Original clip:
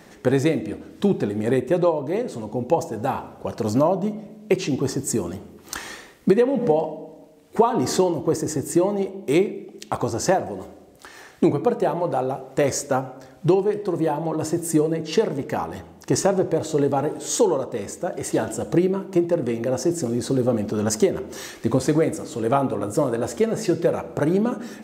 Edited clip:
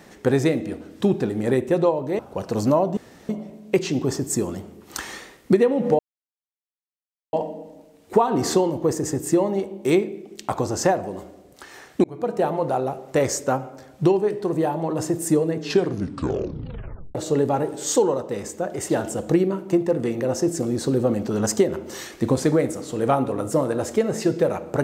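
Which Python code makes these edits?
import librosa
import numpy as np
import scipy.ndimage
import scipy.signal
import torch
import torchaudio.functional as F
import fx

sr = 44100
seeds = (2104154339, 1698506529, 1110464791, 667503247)

y = fx.edit(x, sr, fx.cut(start_s=2.19, length_s=1.09),
    fx.insert_room_tone(at_s=4.06, length_s=0.32),
    fx.insert_silence(at_s=6.76, length_s=1.34),
    fx.fade_in_span(start_s=11.47, length_s=0.38),
    fx.tape_stop(start_s=15.01, length_s=1.57), tone=tone)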